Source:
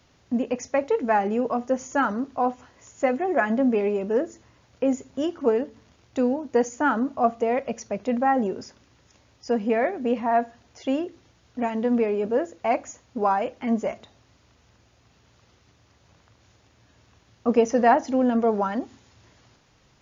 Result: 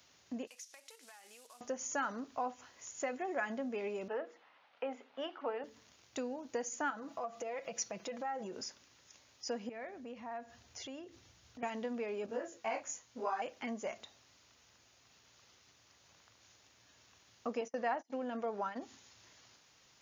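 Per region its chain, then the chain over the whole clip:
0.47–1.61 CVSD 64 kbps + band-pass 5500 Hz, Q 0.76 + compressor 12:1, threshold -47 dBFS
4.08–5.64 speaker cabinet 350–3300 Hz, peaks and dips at 360 Hz -8 dB, 800 Hz +7 dB, 1300 Hz +4 dB + notches 60/120/180/240/300/360/420/480 Hz
6.9–8.55 comb 6 ms, depth 67% + compressor 4:1, threshold -29 dBFS
9.69–11.63 bell 75 Hz +13 dB 2 oct + compressor 2.5:1, threshold -40 dBFS
12.26–13.42 doubler 18 ms -2 dB + detuned doubles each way 31 cents
17.61–18.82 gate -29 dBFS, range -31 dB + tone controls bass -3 dB, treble -6 dB
whole clip: compressor 3:1, threshold -27 dBFS; tilt +3 dB/oct; gain -6.5 dB

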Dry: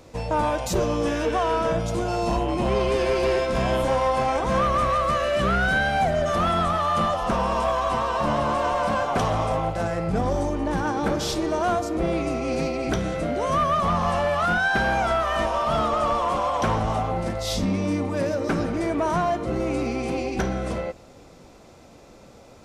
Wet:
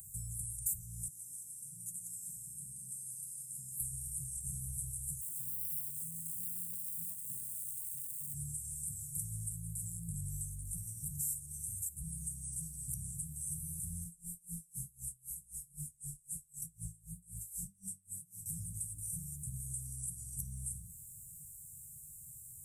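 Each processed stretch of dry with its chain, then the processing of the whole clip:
1.08–3.8 HPF 400 Hz + high shelf 2100 Hz -10 dB + echo 0.179 s -4.5 dB
5.21–8.34 median filter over 41 samples + HPF 220 Hz + doubler 18 ms -11.5 dB
14.04–18.46 comb 5.7 ms, depth 93% + chorus 2.1 Hz, delay 16.5 ms, depth 7.3 ms + dB-linear tremolo 3.9 Hz, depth 30 dB
whole clip: Chebyshev band-stop 150–8100 Hz, order 5; RIAA curve recording; compressor 2.5:1, threshold -47 dBFS; gain +6.5 dB

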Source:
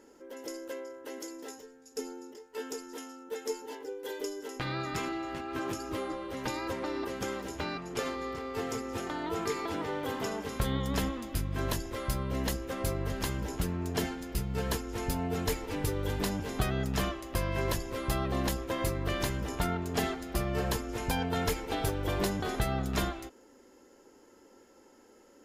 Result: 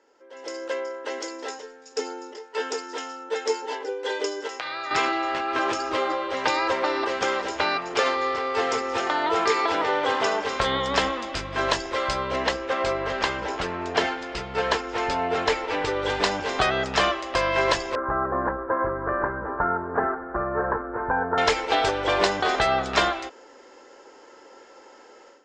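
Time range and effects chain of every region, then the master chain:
4.47–4.91 HPF 660 Hz 6 dB/oct + compressor 10:1, threshold -41 dBFS
12.36–16.02 steep low-pass 8900 Hz 48 dB/oct + tone controls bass -2 dB, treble -6 dB
17.95–21.38 Chebyshev low-pass 1600 Hz, order 5 + bell 690 Hz -6 dB 0.47 oct
whole clip: Chebyshev low-pass 8300 Hz, order 5; three-band isolator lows -20 dB, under 450 Hz, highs -18 dB, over 5700 Hz; AGC gain up to 15 dB

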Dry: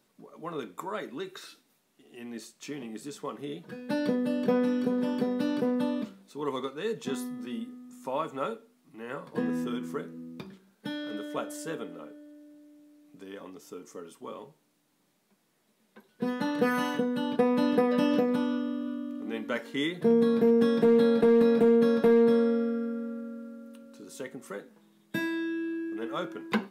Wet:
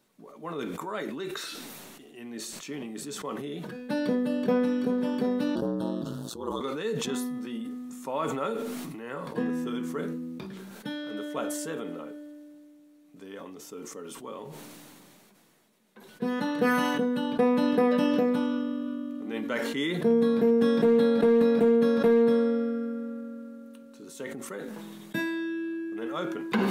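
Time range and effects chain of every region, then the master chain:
5.55–6.61 ring modulator 58 Hz + Butterworth band-stop 2200 Hz, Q 1.3
whole clip: notch 5000 Hz, Q 22; sustainer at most 21 dB/s

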